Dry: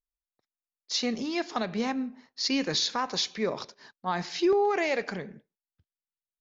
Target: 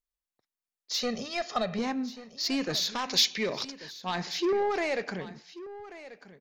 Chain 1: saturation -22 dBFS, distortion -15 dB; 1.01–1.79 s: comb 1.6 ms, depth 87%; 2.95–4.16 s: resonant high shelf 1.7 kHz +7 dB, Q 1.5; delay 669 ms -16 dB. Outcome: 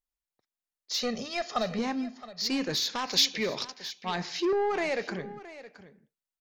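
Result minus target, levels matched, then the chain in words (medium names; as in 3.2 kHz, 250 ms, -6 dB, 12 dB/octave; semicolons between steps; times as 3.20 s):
echo 468 ms early
saturation -22 dBFS, distortion -15 dB; 1.01–1.79 s: comb 1.6 ms, depth 87%; 2.95–4.16 s: resonant high shelf 1.7 kHz +7 dB, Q 1.5; delay 1137 ms -16 dB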